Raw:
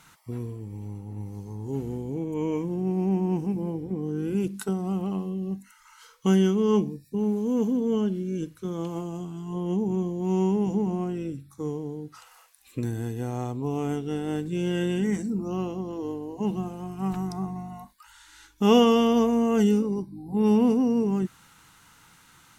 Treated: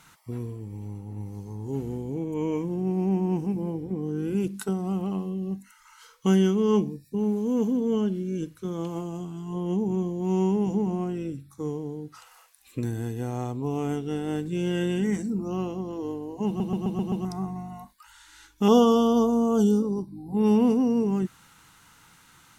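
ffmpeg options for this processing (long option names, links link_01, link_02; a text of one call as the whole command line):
ffmpeg -i in.wav -filter_complex "[0:a]asettb=1/sr,asplit=3[link_01][link_02][link_03];[link_01]atrim=end=18.684[link_04];[link_02]atrim=start=18.68:end=20.08,asetpts=PTS-STARTPTS,afade=type=in:duration=0.004:curve=qsin,afade=type=out:start_time=1.396:duration=0.004:curve=qsin,asuperstop=centerf=2100:order=12:qfactor=1.3[link_05];[link_03]atrim=start=20.076[link_06];[link_04][link_05]acrossfade=duration=0.004:curve1=hsin:curve2=qsin[link_07];[link_07][link_06]acrossfade=duration=0.004:curve1=qsin:curve2=hsin,asplit=7[link_08][link_09][link_10][link_11][link_12][link_13][link_14];[link_08]atrim=end=16.602[link_15];[link_09]atrim=start=16.468:end=16.602[link_16];[link_10]atrim=start=16.468:end=16.602[link_17];[link_11]atrim=start=16.468:end=16.602[link_18];[link_12]atrim=start=16.468:end=16.602[link_19];[link_13]atrim=start=16.468:end=16.602[link_20];[link_14]atrim=start=17.248[link_21];[link_15][link_16]acrossfade=duration=0.004:curve1=hsin:curve2=hsin[link_22];[link_22][link_17]acrossfade=duration=0.004:curve1=hsin:curve2=hsin[link_23];[link_23][link_18]acrossfade=duration=0.004:curve1=hsin:curve2=hsin[link_24];[link_24][link_19]acrossfade=duration=0.004:curve1=hsin:curve2=hsin[link_25];[link_25][link_20]acrossfade=duration=0.004:curve1=hsin:curve2=hsin[link_26];[link_26][link_21]acrossfade=duration=0.004:curve1=hsin:curve2=hsin" out.wav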